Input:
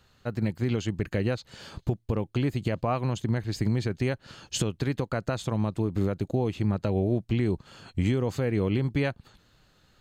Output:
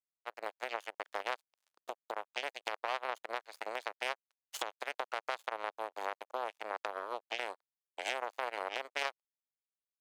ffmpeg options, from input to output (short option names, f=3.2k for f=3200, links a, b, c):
-af "aeval=exprs='0.188*(cos(1*acos(clip(val(0)/0.188,-1,1)))-cos(1*PI/2))+0.075*(cos(3*acos(clip(val(0)/0.188,-1,1)))-cos(3*PI/2))+0.0106*(cos(4*acos(clip(val(0)/0.188,-1,1)))-cos(4*PI/2))+0.0119*(cos(5*acos(clip(val(0)/0.188,-1,1)))-cos(5*PI/2))+0.00106*(cos(8*acos(clip(val(0)/0.188,-1,1)))-cos(8*PI/2))':c=same,aeval=exprs='sgn(val(0))*max(abs(val(0))-0.00211,0)':c=same,highpass=f=590:w=0.5412,highpass=f=590:w=1.3066,volume=2dB"